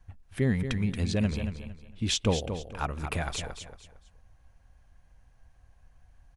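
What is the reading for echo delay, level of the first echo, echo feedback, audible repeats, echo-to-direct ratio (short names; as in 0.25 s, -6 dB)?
0.228 s, -8.5 dB, 29%, 3, -8.0 dB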